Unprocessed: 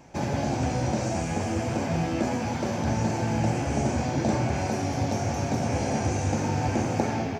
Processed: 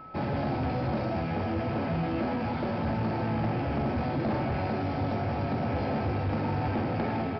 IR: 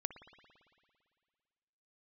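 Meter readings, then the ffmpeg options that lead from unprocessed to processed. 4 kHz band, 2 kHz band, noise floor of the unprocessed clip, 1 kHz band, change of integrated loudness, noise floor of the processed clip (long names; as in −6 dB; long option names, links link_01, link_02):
−6.5 dB, −3.0 dB, −30 dBFS, −2.0 dB, −3.0 dB, −31 dBFS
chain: -af "aemphasis=mode=reproduction:type=50fm,aeval=exprs='val(0)+0.00631*sin(2*PI*1300*n/s)':channel_layout=same,bandreject=frequency=60:width_type=h:width=6,bandreject=frequency=120:width_type=h:width=6,aresample=11025,asoftclip=type=tanh:threshold=-23.5dB,aresample=44100"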